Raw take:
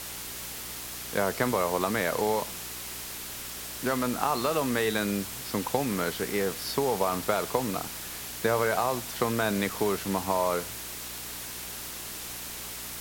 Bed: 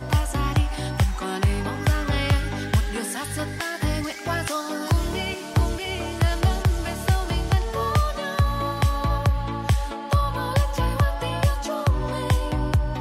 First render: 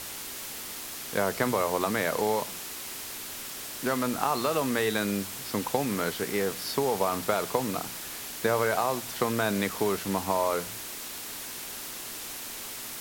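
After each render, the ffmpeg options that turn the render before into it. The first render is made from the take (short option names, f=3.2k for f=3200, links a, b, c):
-af "bandreject=f=60:t=h:w=4,bandreject=f=120:t=h:w=4,bandreject=f=180:t=h:w=4"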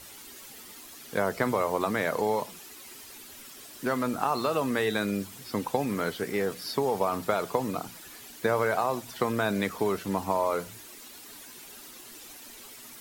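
-af "afftdn=nr=11:nf=-39"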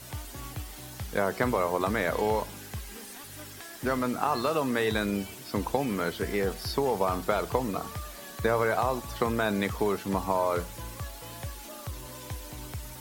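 -filter_complex "[1:a]volume=-18dB[a];[0:a][a]amix=inputs=2:normalize=0"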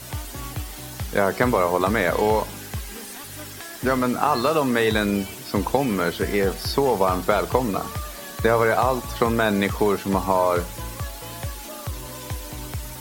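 -af "volume=7dB"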